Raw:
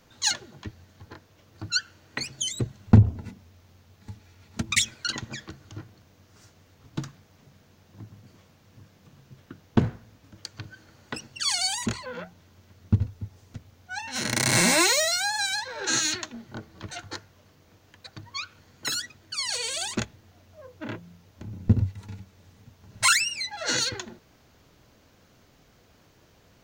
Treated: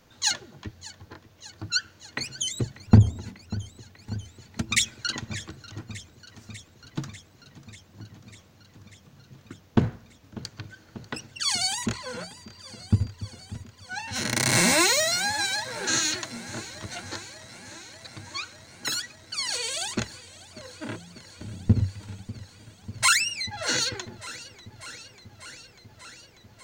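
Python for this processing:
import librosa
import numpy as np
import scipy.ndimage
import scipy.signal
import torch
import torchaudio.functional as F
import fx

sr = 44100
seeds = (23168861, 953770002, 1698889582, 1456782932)

y = fx.dmg_tone(x, sr, hz=4700.0, level_db=-51.0, at=(12.24, 13.1), fade=0.02)
y = fx.echo_warbled(y, sr, ms=593, feedback_pct=76, rate_hz=2.8, cents=69, wet_db=-18.0)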